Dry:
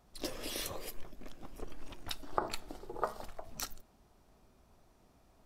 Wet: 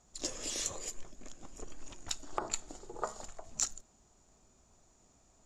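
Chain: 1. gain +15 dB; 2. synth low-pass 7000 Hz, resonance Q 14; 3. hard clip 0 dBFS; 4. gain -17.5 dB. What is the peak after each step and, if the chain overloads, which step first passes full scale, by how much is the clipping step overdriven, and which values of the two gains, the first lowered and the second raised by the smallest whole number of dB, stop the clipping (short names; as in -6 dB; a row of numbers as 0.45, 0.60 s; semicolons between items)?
+3.5, +3.5, 0.0, -17.5 dBFS; step 1, 3.5 dB; step 1 +11 dB, step 4 -13.5 dB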